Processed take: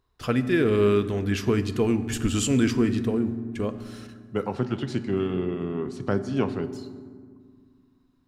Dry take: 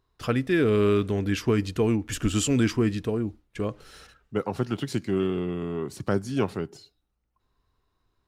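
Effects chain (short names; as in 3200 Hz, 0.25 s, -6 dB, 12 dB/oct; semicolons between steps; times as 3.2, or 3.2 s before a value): 4.53–6.63 air absorption 79 m; reverb RT60 1.9 s, pre-delay 4 ms, DRR 10.5 dB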